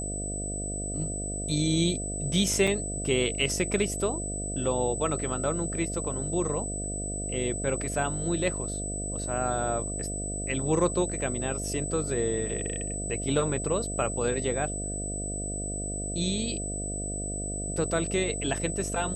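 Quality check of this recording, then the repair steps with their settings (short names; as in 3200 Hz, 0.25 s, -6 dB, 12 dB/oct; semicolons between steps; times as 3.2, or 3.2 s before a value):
buzz 50 Hz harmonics 14 -35 dBFS
tone 8000 Hz -34 dBFS
2.67 gap 5 ms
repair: de-hum 50 Hz, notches 14; notch 8000 Hz, Q 30; interpolate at 2.67, 5 ms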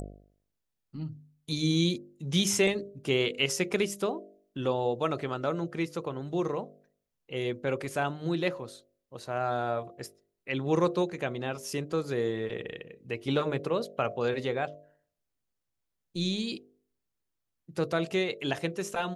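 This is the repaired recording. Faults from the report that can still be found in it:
none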